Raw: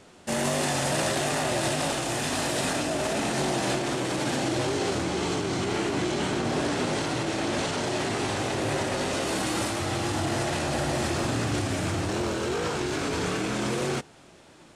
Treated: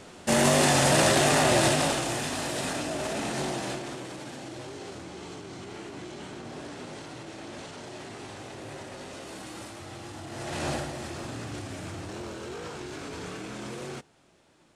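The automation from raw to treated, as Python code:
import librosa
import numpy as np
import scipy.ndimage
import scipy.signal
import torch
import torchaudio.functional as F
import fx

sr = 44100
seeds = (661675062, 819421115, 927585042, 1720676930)

y = fx.gain(x, sr, db=fx.line((1.59, 5.0), (2.35, -4.0), (3.44, -4.0), (4.32, -13.5), (10.28, -13.5), (10.69, -1.0), (10.92, -10.0)))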